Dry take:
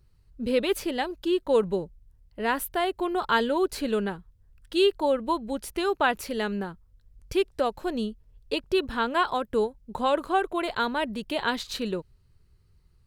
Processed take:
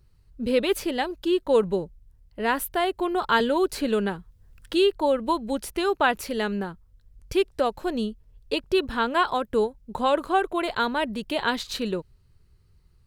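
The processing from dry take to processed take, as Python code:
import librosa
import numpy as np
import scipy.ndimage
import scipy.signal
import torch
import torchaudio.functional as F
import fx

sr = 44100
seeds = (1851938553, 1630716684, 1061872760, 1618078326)

y = fx.band_squash(x, sr, depth_pct=40, at=(3.4, 5.7))
y = F.gain(torch.from_numpy(y), 2.0).numpy()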